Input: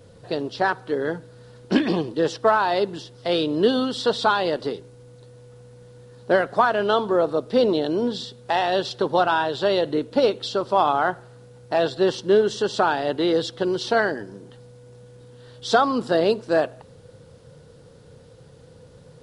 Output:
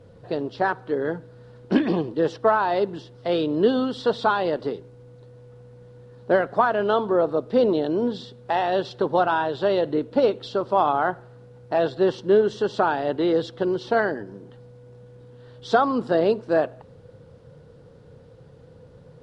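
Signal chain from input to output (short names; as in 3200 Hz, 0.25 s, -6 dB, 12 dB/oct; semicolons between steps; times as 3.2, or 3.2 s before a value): LPF 1700 Hz 6 dB/oct; 13.74–14.26 mismatched tape noise reduction decoder only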